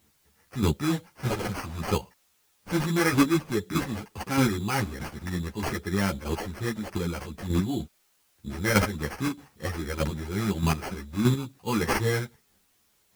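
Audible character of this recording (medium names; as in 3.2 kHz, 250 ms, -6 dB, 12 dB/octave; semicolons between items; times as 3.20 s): aliases and images of a low sample rate 3.7 kHz, jitter 0%; chopped level 1.6 Hz, depth 60%, duty 15%; a quantiser's noise floor 12-bit, dither triangular; a shimmering, thickened sound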